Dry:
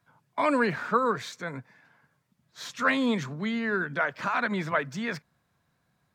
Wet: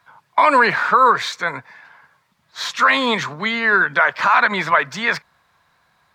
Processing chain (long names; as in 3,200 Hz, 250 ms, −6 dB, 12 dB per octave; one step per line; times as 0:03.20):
graphic EQ with 10 bands 125 Hz −6 dB, 250 Hz −6 dB, 1,000 Hz +9 dB, 2,000 Hz +5 dB, 4,000 Hz +6 dB
brickwall limiter −11.5 dBFS, peak gain reduction 8.5 dB
level +8 dB